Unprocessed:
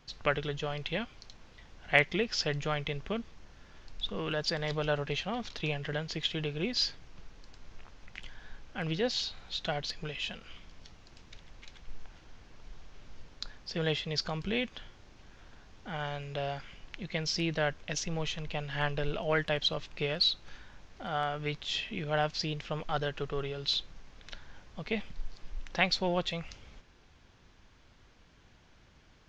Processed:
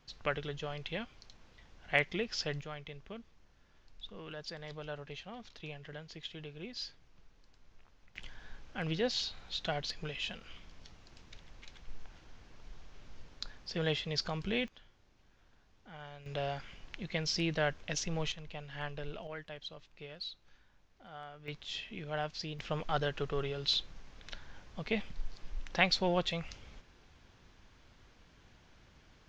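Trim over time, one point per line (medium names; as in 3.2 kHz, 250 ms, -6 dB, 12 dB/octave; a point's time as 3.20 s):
-5 dB
from 2.61 s -12 dB
from 8.16 s -2 dB
from 14.68 s -12.5 dB
from 16.26 s -1.5 dB
from 18.32 s -9 dB
from 19.27 s -15.5 dB
from 21.48 s -7 dB
from 22.59 s -0.5 dB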